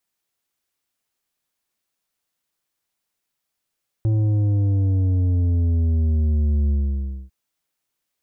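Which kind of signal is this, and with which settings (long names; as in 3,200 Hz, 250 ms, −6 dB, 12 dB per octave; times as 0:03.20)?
bass drop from 110 Hz, over 3.25 s, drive 8 dB, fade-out 0.60 s, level −17 dB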